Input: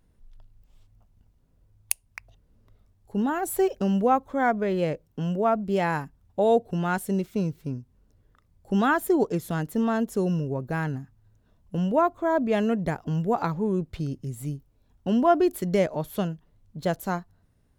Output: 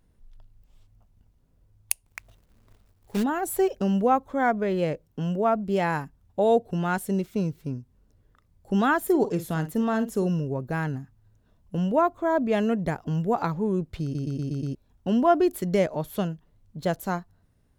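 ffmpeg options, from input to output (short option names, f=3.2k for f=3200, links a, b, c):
-filter_complex "[0:a]asplit=3[a][b][c];[a]afade=t=out:st=2.04:d=0.02[d];[b]acrusher=bits=2:mode=log:mix=0:aa=0.000001,afade=t=in:st=2.04:d=0.02,afade=t=out:st=3.22:d=0.02[e];[c]afade=t=in:st=3.22:d=0.02[f];[d][e][f]amix=inputs=3:normalize=0,asettb=1/sr,asplit=3[g][h][i];[g]atrim=end=9.034[j];[h]atrim=start=9.03:end=10.27,asetpts=PTS-STARTPTS,afade=t=in:d=0.004:c=qsin,afade=t=out:st=1.236:d=0.004:c=qsin,asplit=2[k][l];[l]adelay=50,volume=-12.5dB[m];[k][m]amix=inputs=2:normalize=0,atrim=end_sample=54684[n];[i]atrim=start=10.266[o];[j][n]acrossfade=d=0.004:c1=hsin:c2=qsin[p];[p][o]acrossfade=d=0.004:c1=qsin:c2=hsin,asplit=7[q][r][s][t][u][v][w];[q]atrim=end=14.152[x];[r]atrim=start=14.028:end=14.152[y];[s]atrim=start=14.028:end=14.152[z];[t]atrim=start=14.028:end=14.152[aa];[u]atrim=start=14.028:end=14.152[ab];[v]atrim=start=14.028:end=14.152[ac];[w]atrim=start=14.748[ad];[x][y]acrossfade=d=0.004:c1=hsin:c2=hsin[ae];[ae][z]acrossfade=d=0.004:c1=hsin:c2=hsin[af];[af][aa]acrossfade=d=0.004:c1=hsin:c2=hsin[ag];[ag][ab]acrossfade=d=0.004:c1=hsin:c2=hsin[ah];[ah][ac]acrossfade=d=0.004:c1=hsin:c2=hsin[ai];[ai][ad]acrossfade=d=0.004:c1=hsin:c2=hsin"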